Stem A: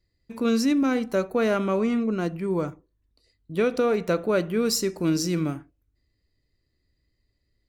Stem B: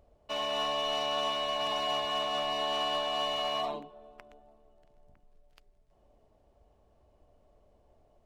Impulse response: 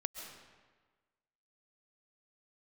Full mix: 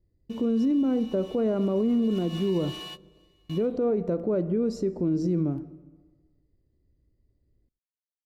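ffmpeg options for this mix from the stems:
-filter_complex "[0:a]lowpass=6.7k,acontrast=29,firequalizer=gain_entry='entry(360,0);entry(1400,-17);entry(2600,-22)':delay=0.05:min_phase=1,volume=-1.5dB,asplit=3[a][b][c];[b]volume=-16dB[d];[1:a]highpass=1.5k,equalizer=f=13k:t=o:w=1.2:g=13,volume=-6dB,afade=t=in:st=2.01:d=0.23:silence=0.316228,afade=t=out:st=3.21:d=0.53:silence=0.354813[e];[c]apad=whole_len=364056[f];[e][f]sidechaingate=range=-27dB:threshold=-57dB:ratio=16:detection=peak[g];[2:a]atrim=start_sample=2205[h];[d][h]afir=irnorm=-1:irlink=0[i];[a][g][i]amix=inputs=3:normalize=0,alimiter=limit=-18.5dB:level=0:latency=1:release=104"

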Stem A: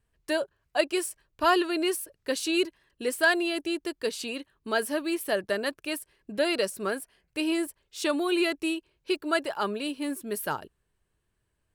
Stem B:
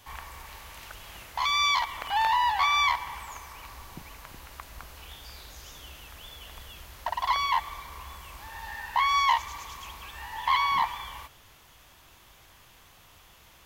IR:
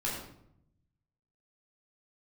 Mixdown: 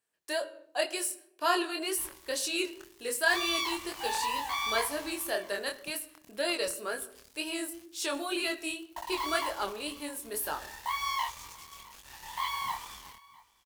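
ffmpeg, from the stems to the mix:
-filter_complex "[0:a]highpass=390,volume=-2.5dB,asplit=2[a][b];[b]volume=-15.5dB[c];[1:a]acrusher=bits=5:mix=0:aa=0.5,adelay=1900,volume=-6.5dB,asplit=2[d][e];[e]volume=-22.5dB[f];[2:a]atrim=start_sample=2205[g];[c][g]afir=irnorm=-1:irlink=0[h];[f]aecho=0:1:661:1[i];[a][d][h][i]amix=inputs=4:normalize=0,bass=f=250:g=1,treble=f=4k:g=7,flanger=delay=20:depth=6.7:speed=2"

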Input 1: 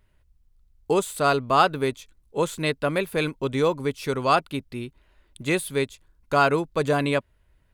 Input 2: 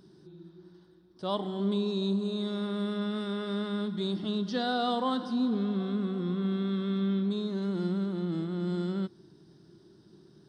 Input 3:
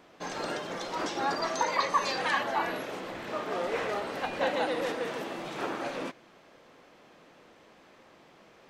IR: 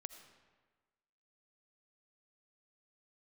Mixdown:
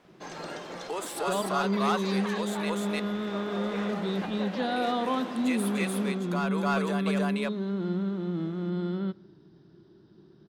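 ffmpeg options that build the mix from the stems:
-filter_complex "[0:a]highpass=570,asoftclip=type=tanh:threshold=-14.5dB,volume=-2.5dB,asplit=3[a][b][c];[a]atrim=end=2.7,asetpts=PTS-STARTPTS,afade=t=out:st=2.696:d=0.004:c=hsin[d];[b]atrim=start=2.7:end=4.76,asetpts=PTS-STARTPTS,volume=0[e];[c]atrim=start=4.76,asetpts=PTS-STARTPTS,afade=t=in:d=0.004:c=hsin[f];[d][e][f]concat=n=3:v=0:a=1,asplit=2[g][h];[h]volume=-4dB[i];[1:a]lowpass=3.3k,adelay=50,volume=-0.5dB,asplit=2[j][k];[k]volume=-10.5dB[l];[2:a]alimiter=limit=-22dB:level=0:latency=1:release=243,volume=-4.5dB,asplit=2[m][n];[n]volume=-8.5dB[o];[g][m]amix=inputs=2:normalize=0,alimiter=level_in=1dB:limit=-24dB:level=0:latency=1:release=223,volume=-1dB,volume=0dB[p];[3:a]atrim=start_sample=2205[q];[l][q]afir=irnorm=-1:irlink=0[r];[i][o]amix=inputs=2:normalize=0,aecho=0:1:299:1[s];[j][p][r][s]amix=inputs=4:normalize=0"

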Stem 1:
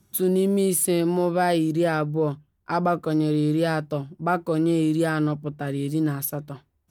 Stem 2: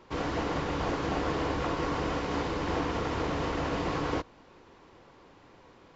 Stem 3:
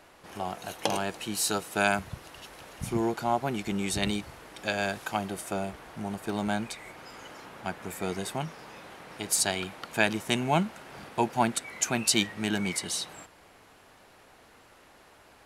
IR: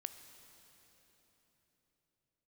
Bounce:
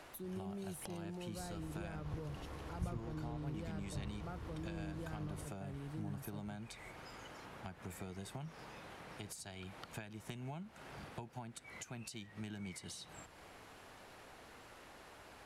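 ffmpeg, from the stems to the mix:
-filter_complex "[0:a]volume=-13dB[a];[1:a]adelay=1250,volume=-11dB[b];[2:a]acompressor=threshold=-34dB:ratio=6,volume=1dB[c];[a][b][c]amix=inputs=3:normalize=0,highshelf=f=12k:g=-5,acrossover=split=140[d][e];[e]acompressor=threshold=-54dB:ratio=2.5[f];[d][f]amix=inputs=2:normalize=0"

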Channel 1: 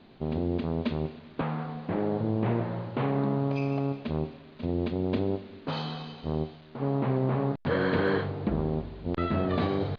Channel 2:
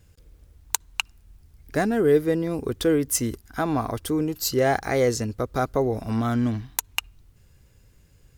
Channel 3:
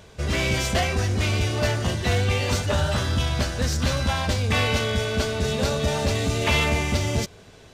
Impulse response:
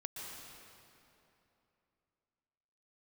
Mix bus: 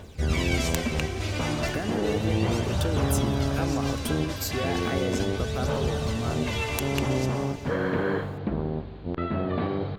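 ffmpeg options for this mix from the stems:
-filter_complex "[0:a]acrossover=split=2900[a][b];[b]acompressor=threshold=-53dB:ratio=4:attack=1:release=60[c];[a][c]amix=inputs=2:normalize=0,volume=-1.5dB,asplit=2[d][e];[e]volume=-13dB[f];[1:a]acompressor=threshold=-32dB:ratio=6,volume=2dB,asplit=2[g][h];[2:a]aphaser=in_gain=1:out_gain=1:delay=3.5:decay=0.65:speed=0.35:type=triangular,volume=-7dB,asplit=2[i][j];[j]volume=-4dB[k];[h]apad=whole_len=341229[l];[i][l]sidechaincompress=threshold=-49dB:ratio=8:attack=49:release=390[m];[3:a]atrim=start_sample=2205[n];[f][k]amix=inputs=2:normalize=0[o];[o][n]afir=irnorm=-1:irlink=0[p];[d][g][m][p]amix=inputs=4:normalize=0"

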